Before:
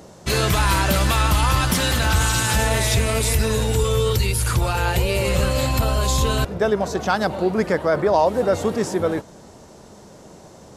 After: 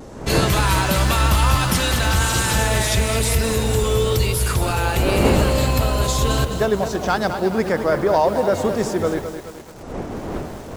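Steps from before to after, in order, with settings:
wind on the microphone 490 Hz −30 dBFS
pitch vibrato 0.97 Hz 34 cents
feedback echo at a low word length 213 ms, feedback 55%, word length 6 bits, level −8.5 dB

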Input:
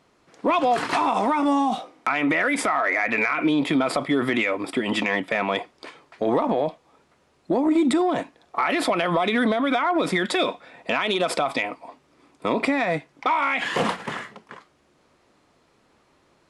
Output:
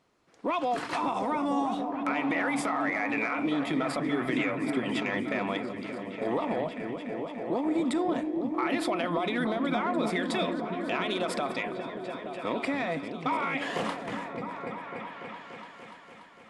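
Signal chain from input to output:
echo whose low-pass opens from repeat to repeat 290 ms, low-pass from 200 Hz, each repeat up 1 octave, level 0 dB
level −8.5 dB

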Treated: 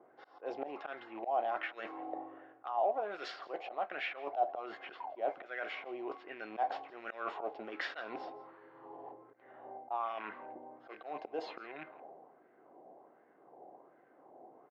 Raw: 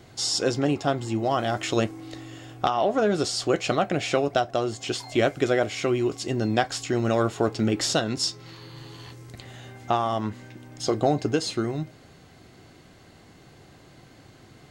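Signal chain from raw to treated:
loose part that buzzes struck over −30 dBFS, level −32 dBFS
low-pass filter 3,200 Hz 12 dB per octave
low-pass that shuts in the quiet parts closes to 480 Hz, open at −18 dBFS
high-pass filter 380 Hz 12 dB per octave
parametric band 1,300 Hz −9 dB 1 octave
volume swells 161 ms
reversed playback
downward compressor 5 to 1, threshold −41 dBFS, peak gain reduction 17.5 dB
reversed playback
LFO wah 1.3 Hz 760–1,600 Hz, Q 3.4
on a send: single-tap delay 166 ms −21 dB
on the sum: level +16 dB

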